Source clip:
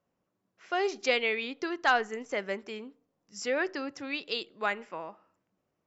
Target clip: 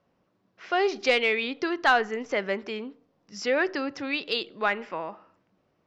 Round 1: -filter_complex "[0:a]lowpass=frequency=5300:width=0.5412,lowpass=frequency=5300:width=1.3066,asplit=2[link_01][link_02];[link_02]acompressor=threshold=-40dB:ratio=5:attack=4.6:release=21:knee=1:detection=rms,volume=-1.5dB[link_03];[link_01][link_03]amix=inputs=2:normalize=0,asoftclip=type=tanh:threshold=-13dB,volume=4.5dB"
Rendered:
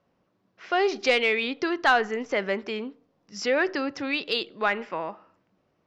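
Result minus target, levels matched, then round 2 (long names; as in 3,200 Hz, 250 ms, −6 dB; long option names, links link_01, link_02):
downward compressor: peak gain reduction −8.5 dB
-filter_complex "[0:a]lowpass=frequency=5300:width=0.5412,lowpass=frequency=5300:width=1.3066,asplit=2[link_01][link_02];[link_02]acompressor=threshold=-50.5dB:ratio=5:attack=4.6:release=21:knee=1:detection=rms,volume=-1.5dB[link_03];[link_01][link_03]amix=inputs=2:normalize=0,asoftclip=type=tanh:threshold=-13dB,volume=4.5dB"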